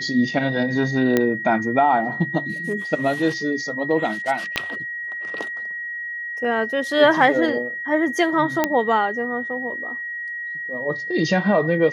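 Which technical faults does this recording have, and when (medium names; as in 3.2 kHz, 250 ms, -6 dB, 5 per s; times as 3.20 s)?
whine 1.9 kHz -27 dBFS
1.17 s: pop -5 dBFS
4.56 s: pop -8 dBFS
8.64 s: pop -4 dBFS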